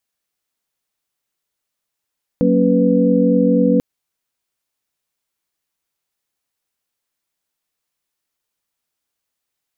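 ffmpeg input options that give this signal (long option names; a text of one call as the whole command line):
ffmpeg -f lavfi -i "aevalsrc='0.15*(sin(2*PI*185*t)+sin(2*PI*233.08*t)+sin(2*PI*277.18*t)+sin(2*PI*493.88*t))':duration=1.39:sample_rate=44100" out.wav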